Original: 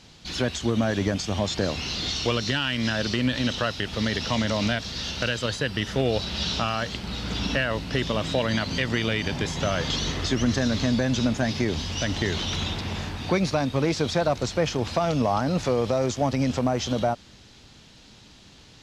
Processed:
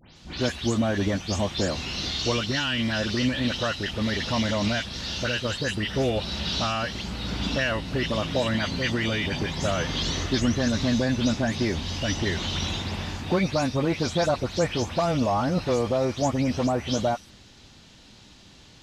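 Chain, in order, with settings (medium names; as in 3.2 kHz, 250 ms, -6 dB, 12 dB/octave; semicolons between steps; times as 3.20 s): delay that grows with frequency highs late, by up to 159 ms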